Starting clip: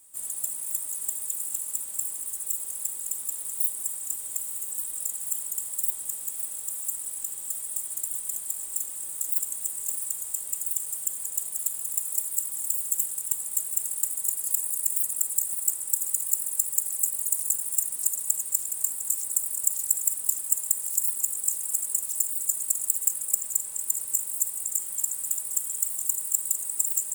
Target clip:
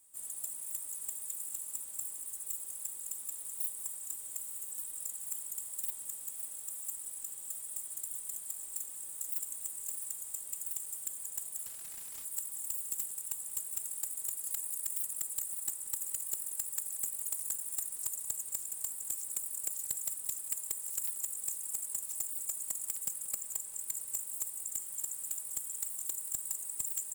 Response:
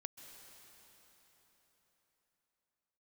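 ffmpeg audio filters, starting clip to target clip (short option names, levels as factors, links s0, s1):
-filter_complex "[0:a]asoftclip=type=tanh:threshold=0.15,asplit=2[s0][s1];[s1]adelay=180.8,volume=0.178,highshelf=f=4000:g=-4.07[s2];[s0][s2]amix=inputs=2:normalize=0,asettb=1/sr,asplit=3[s3][s4][s5];[s3]atrim=end=11.664[s6];[s4]atrim=start=11.66:end=12.25,asetpts=PTS-STARTPTS,afade=t=in:d=0.004:c=qsin,afade=t=out:st=0.586:d=0.004:c=qsin,asoftclip=type=hard:threshold=0.0211[s7];[s5]atrim=start=12.246[s8];[s6][s7]acrossfade=d=0.004:c1=hsin:c2=qsin[s9];[s9][s8]acrossfade=d=0.004:c1=qsin:c2=hsin,volume=0.376"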